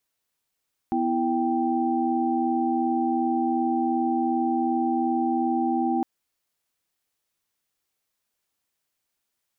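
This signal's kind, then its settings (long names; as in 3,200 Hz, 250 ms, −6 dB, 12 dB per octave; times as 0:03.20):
held notes B3/E4/G5 sine, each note −25.5 dBFS 5.11 s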